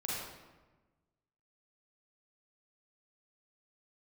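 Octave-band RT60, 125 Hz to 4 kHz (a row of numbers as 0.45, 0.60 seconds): 1.6, 1.5, 1.3, 1.2, 1.0, 0.80 seconds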